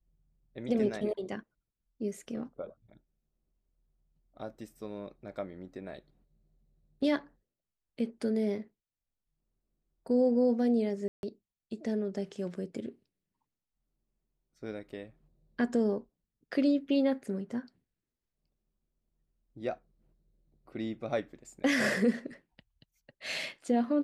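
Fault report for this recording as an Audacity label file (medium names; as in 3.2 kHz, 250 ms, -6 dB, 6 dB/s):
11.080000	11.230000	dropout 151 ms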